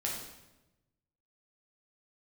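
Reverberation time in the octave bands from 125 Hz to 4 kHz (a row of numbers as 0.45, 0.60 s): 1.5, 1.2, 1.1, 0.95, 0.90, 0.80 s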